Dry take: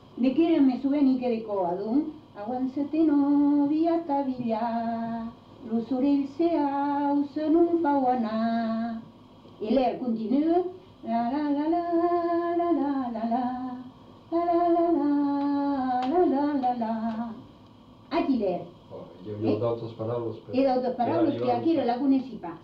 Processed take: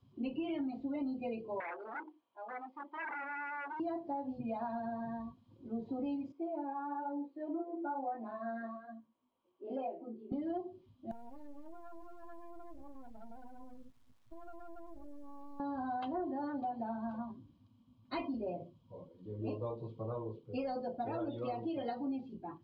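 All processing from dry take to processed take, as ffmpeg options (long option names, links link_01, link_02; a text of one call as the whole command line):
ffmpeg -i in.wav -filter_complex "[0:a]asettb=1/sr,asplit=3[link_01][link_02][link_03];[link_01]atrim=end=1.604[link_04];[link_02]atrim=start=1.6:end=3.8,asetpts=PTS-STARTPTS,afade=type=in:duration=0.004:curve=qsin,afade=type=out:start_time=2.196:duration=0.004:curve=qsin,aeval=exprs='0.0422*(abs(mod(val(0)/0.0422+3,4)-2)-1)':channel_layout=same,highpass=480,lowpass=2700[link_05];[link_03]atrim=start=3.796[link_06];[link_04][link_05]acrossfade=duration=0.004:curve1=hsin:curve2=qsin[link_07];[link_07][link_06]acrossfade=duration=0.004:curve1=qsin:curve2=hsin,asettb=1/sr,asplit=3[link_08][link_09][link_10];[link_08]atrim=end=6.324[link_11];[link_09]atrim=start=6.32:end=10.32,asetpts=PTS-STARTPTS,afade=type=in:duration=0.004:curve=qsin,afade=type=out:start_time=3.996:duration=0.004:curve=qsin,acrossover=split=250 2800:gain=0.112 1 0.178[link_12][link_13][link_14];[link_12][link_13][link_14]amix=inputs=3:normalize=0,flanger=delay=17.5:depth=4.8:speed=1.1[link_15];[link_10]atrim=start=10.316[link_16];[link_11][link_15]acrossfade=duration=0.004:curve1=hsin:curve2=qsin[link_17];[link_17][link_16]acrossfade=duration=0.004:curve1=qsin:curve2=hsin,asettb=1/sr,asplit=3[link_18][link_19][link_20];[link_18]atrim=end=11.114[link_21];[link_19]atrim=start=11.11:end=15.6,asetpts=PTS-STARTPTS,afade=type=in:duration=0.004:curve=qsin,afade=type=out:start_time=4.486:duration=0.004:curve=qsin,acompressor=threshold=-35dB:ratio=16:attack=3.2:release=140:knee=1:detection=peak,acrusher=bits=6:dc=4:mix=0:aa=0.000001[link_22];[link_20]atrim=start=15.596[link_23];[link_21][link_22]acrossfade=duration=0.004:curve1=hsin:curve2=qsin[link_24];[link_24][link_23]acrossfade=duration=0.004:curve1=qsin:curve2=hsin,afftdn=noise_reduction=19:noise_floor=-39,equalizer=frequency=350:width=0.39:gain=-8,acompressor=threshold=-32dB:ratio=6,volume=-2.5dB" out.wav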